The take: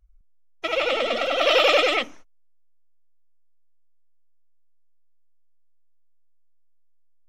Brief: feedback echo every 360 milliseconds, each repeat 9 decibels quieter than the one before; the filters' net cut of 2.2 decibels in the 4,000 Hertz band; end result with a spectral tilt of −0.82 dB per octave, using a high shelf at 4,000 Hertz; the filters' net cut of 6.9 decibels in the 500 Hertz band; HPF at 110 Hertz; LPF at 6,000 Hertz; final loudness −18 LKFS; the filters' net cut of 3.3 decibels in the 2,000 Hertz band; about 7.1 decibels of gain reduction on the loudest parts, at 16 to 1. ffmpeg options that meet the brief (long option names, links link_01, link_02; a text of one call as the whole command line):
ffmpeg -i in.wav -af "highpass=110,lowpass=6000,equalizer=frequency=500:width_type=o:gain=-8,equalizer=frequency=2000:width_type=o:gain=-4.5,highshelf=frequency=4000:gain=7.5,equalizer=frequency=4000:width_type=o:gain=-4.5,acompressor=threshold=-25dB:ratio=16,aecho=1:1:360|720|1080|1440:0.355|0.124|0.0435|0.0152,volume=11.5dB" out.wav